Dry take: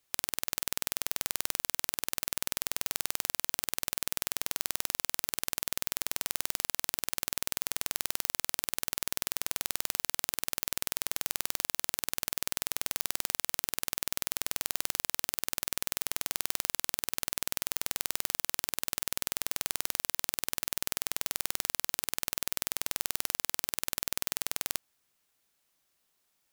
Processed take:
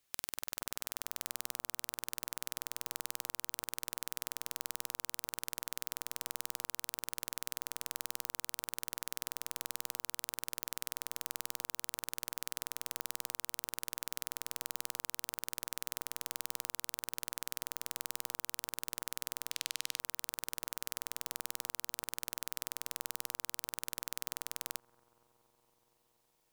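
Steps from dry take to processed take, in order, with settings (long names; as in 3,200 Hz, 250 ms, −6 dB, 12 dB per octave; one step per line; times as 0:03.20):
0:19.51–0:20.00: meter weighting curve D
brickwall limiter −7.5 dBFS, peak gain reduction 8.5 dB
bucket-brigade delay 234 ms, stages 2,048, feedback 83%, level −21 dB
level −2 dB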